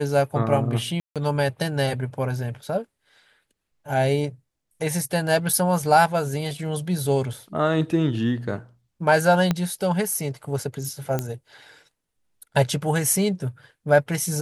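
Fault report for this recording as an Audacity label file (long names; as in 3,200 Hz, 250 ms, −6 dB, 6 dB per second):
1.000000	1.160000	drop-out 157 ms
9.510000	9.510000	click −8 dBFS
11.190000	11.190000	click −11 dBFS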